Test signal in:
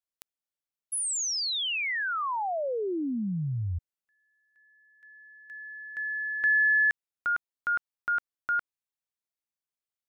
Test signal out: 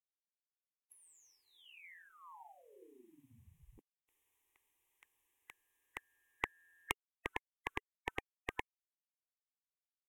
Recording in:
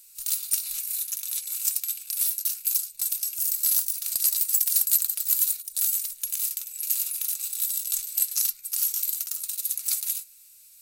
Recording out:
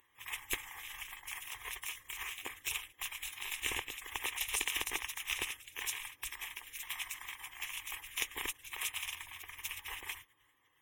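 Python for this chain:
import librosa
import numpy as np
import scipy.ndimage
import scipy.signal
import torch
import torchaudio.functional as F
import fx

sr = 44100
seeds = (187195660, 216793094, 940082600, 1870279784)

y = fx.spec_gate(x, sr, threshold_db=-30, keep='weak')
y = fx.env_lowpass_down(y, sr, base_hz=830.0, full_db=-24.0)
y = fx.fixed_phaser(y, sr, hz=940.0, stages=8)
y = y * 10.0 ** (16.0 / 20.0)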